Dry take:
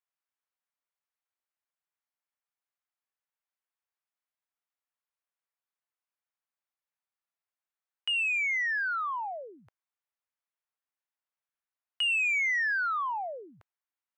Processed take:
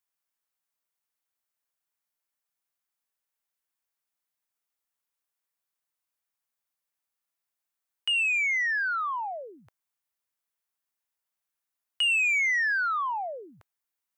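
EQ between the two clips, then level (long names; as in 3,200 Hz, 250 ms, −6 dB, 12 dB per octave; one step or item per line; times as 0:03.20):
high-shelf EQ 6,600 Hz +8.5 dB
+2.0 dB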